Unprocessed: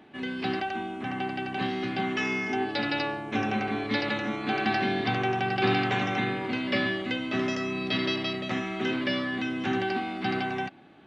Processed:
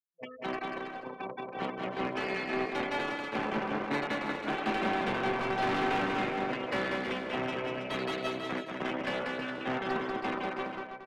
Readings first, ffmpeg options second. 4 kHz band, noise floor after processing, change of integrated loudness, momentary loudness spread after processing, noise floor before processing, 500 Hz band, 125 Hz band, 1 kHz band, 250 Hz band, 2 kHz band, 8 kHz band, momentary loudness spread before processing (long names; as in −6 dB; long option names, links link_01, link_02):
−7.5 dB, −46 dBFS, −4.5 dB, 8 LU, −39 dBFS, −2.5 dB, −8.5 dB, −3.0 dB, −6.5 dB, −4.5 dB, can't be measured, 6 LU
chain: -filter_complex "[0:a]aeval=exprs='0.224*(cos(1*acos(clip(val(0)/0.224,-1,1)))-cos(1*PI/2))+0.00562*(cos(4*acos(clip(val(0)/0.224,-1,1)))-cos(4*PI/2))+0.00355*(cos(5*acos(clip(val(0)/0.224,-1,1)))-cos(5*PI/2))+0.0398*(cos(6*acos(clip(val(0)/0.224,-1,1)))-cos(6*PI/2))+0.0355*(cos(7*acos(clip(val(0)/0.224,-1,1)))-cos(7*PI/2))':channel_layout=same,afftfilt=real='re*gte(hypot(re,im),0.0282)':imag='im*gte(hypot(re,im),0.0282)':win_size=1024:overlap=0.75,highpass=frequency=140:width=0.5412,highpass=frequency=140:width=1.3066,highshelf=frequency=2300:gain=-5,acrossover=split=230[link_01][link_02];[link_02]acontrast=50[link_03];[link_01][link_03]amix=inputs=2:normalize=0,asoftclip=type=tanh:threshold=-22dB,acrossover=split=3200[link_04][link_05];[link_05]acompressor=threshold=-44dB:ratio=4:attack=1:release=60[link_06];[link_04][link_06]amix=inputs=2:normalize=0,aecho=1:1:190|323|416.1|481.3|526.9:0.631|0.398|0.251|0.158|0.1,volume=-4.5dB"